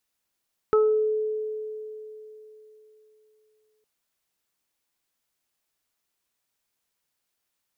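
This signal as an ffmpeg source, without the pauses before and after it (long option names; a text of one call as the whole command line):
ffmpeg -f lavfi -i "aevalsrc='0.168*pow(10,-3*t/3.52)*sin(2*PI*431*t)+0.0251*pow(10,-3*t/0.39)*sin(2*PI*862*t)+0.0794*pow(10,-3*t/0.43)*sin(2*PI*1293*t)':duration=3.11:sample_rate=44100" out.wav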